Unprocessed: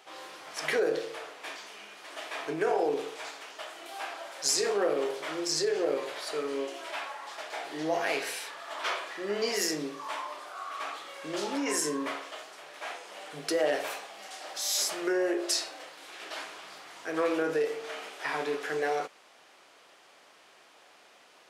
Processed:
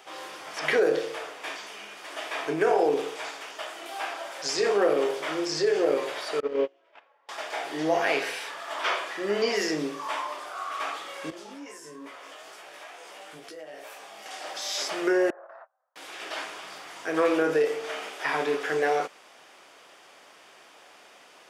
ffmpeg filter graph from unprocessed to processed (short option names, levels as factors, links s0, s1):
-filter_complex "[0:a]asettb=1/sr,asplit=3[s0][s1][s2];[s0]atrim=end=6.404[s3];[s1]atrim=start=6.4:end=7.29,asetpts=PTS-STARTPTS,afade=t=in:d=0.004:c=qsin,afade=t=out:st=0.886:d=0.004:c=qsin,lowpass=3200,agate=range=0.0316:threshold=0.0224:ratio=16:release=100:detection=peak,equalizer=f=490:t=o:w=0.38:g=11.5[s4];[s2]atrim=start=7.286[s5];[s3][s4]acrossfade=d=0.004:c1=hsin:c2=qsin[s6];[s6][s5]acrossfade=d=0.004:c1=qsin:c2=hsin,asettb=1/sr,asplit=3[s7][s8][s9];[s7]atrim=end=11.304[s10];[s8]atrim=start=11.3:end=14.26,asetpts=PTS-STARTPTS,afade=t=in:d=0.004:c=qsin,afade=t=out:st=2.956:d=0.004:c=qsin,highshelf=f=12000:g=5.5,acompressor=threshold=0.00708:ratio=5:attack=3.2:release=140:knee=1:detection=peak,flanger=delay=16:depth=3.3:speed=2.3[s11];[s9]atrim=start=14.256[s12];[s10][s11]acrossfade=d=0.004:c1=hsin:c2=qsin[s13];[s13][s12]acrossfade=d=0.004:c1=qsin:c2=hsin,asettb=1/sr,asplit=3[s14][s15][s16];[s14]atrim=end=15.304[s17];[s15]atrim=start=15.3:end=15.96,asetpts=PTS-STARTPTS,afade=t=in:d=0.004:c=qsin,afade=t=out:st=0.656:d=0.004:c=qsin,agate=range=0.0178:threshold=0.0141:ratio=16:release=100:detection=peak,asuperpass=centerf=930:order=8:qfactor=0.97,acompressor=threshold=0.00447:ratio=12:attack=3.2:release=140:knee=1:detection=peak[s18];[s16]atrim=start=15.956[s19];[s17][s18]acrossfade=d=0.004:c1=hsin:c2=qsin[s20];[s20][s19]acrossfade=d=0.004:c1=qsin:c2=hsin,bandreject=f=4100:w=13,acrossover=split=4900[s21][s22];[s22]acompressor=threshold=0.00282:ratio=4:attack=1:release=60[s23];[s21][s23]amix=inputs=2:normalize=0,volume=1.78"